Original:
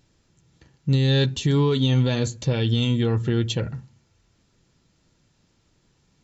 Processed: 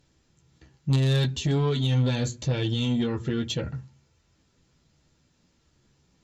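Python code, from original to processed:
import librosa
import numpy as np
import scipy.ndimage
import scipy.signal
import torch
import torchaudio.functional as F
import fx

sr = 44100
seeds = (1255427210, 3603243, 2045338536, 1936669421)

y = fx.chorus_voices(x, sr, voices=4, hz=0.58, base_ms=14, depth_ms=2.0, mix_pct=35)
y = fx.cheby_harmonics(y, sr, harmonics=(3, 5), levels_db=(-14, -17), full_scale_db=-10.0)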